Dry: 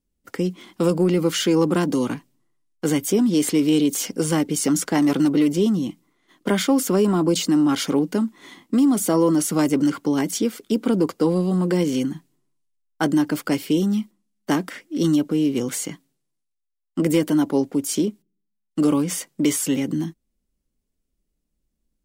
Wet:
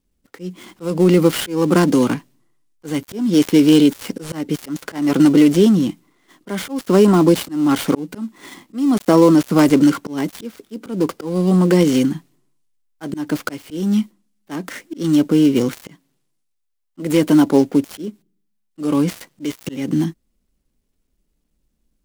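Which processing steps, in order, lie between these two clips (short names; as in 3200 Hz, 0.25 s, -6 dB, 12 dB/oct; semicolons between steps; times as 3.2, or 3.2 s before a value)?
switching dead time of 0.082 ms; auto swell 0.291 s; gain +7 dB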